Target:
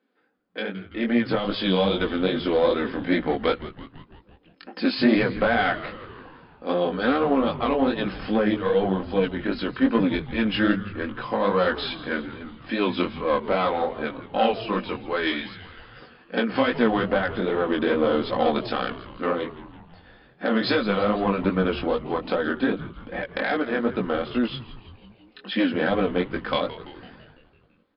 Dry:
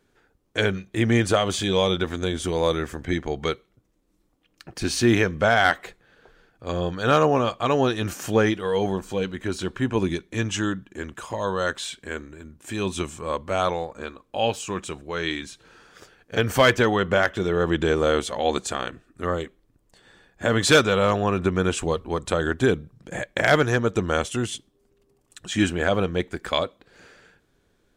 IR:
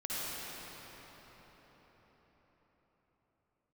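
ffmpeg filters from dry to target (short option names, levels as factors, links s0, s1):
-filter_complex "[0:a]aemphasis=mode=reproduction:type=50fm,acrossover=split=230[s0][s1];[s1]acompressor=threshold=0.0794:ratio=10[s2];[s0][s2]amix=inputs=2:normalize=0,aecho=1:1:3.9:0.51,dynaudnorm=f=140:g=17:m=3.76,aeval=exprs='(tanh(2.24*val(0)+0.6)-tanh(0.6))/2.24':c=same,flanger=delay=16.5:depth=6.4:speed=2.5,afftfilt=real='re*between(b*sr/4096,180,5200)':imag='im*between(b*sr/4096,180,5200)':win_size=4096:overlap=0.75,asplit=8[s3][s4][s5][s6][s7][s8][s9][s10];[s4]adelay=167,afreqshift=-110,volume=0.178[s11];[s5]adelay=334,afreqshift=-220,volume=0.11[s12];[s6]adelay=501,afreqshift=-330,volume=0.0684[s13];[s7]adelay=668,afreqshift=-440,volume=0.0422[s14];[s8]adelay=835,afreqshift=-550,volume=0.0263[s15];[s9]adelay=1002,afreqshift=-660,volume=0.0162[s16];[s10]adelay=1169,afreqshift=-770,volume=0.0101[s17];[s3][s11][s12][s13][s14][s15][s16][s17]amix=inputs=8:normalize=0"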